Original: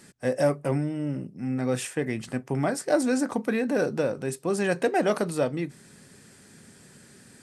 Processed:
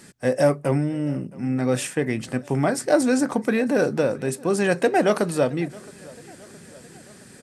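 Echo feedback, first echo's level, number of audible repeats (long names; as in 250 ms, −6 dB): 59%, −23.0 dB, 3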